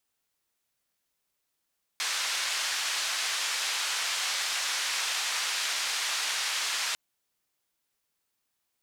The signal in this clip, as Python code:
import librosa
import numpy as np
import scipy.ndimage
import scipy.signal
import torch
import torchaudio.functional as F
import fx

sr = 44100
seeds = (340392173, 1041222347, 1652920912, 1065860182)

y = fx.band_noise(sr, seeds[0], length_s=4.95, low_hz=1100.0, high_hz=5800.0, level_db=-30.5)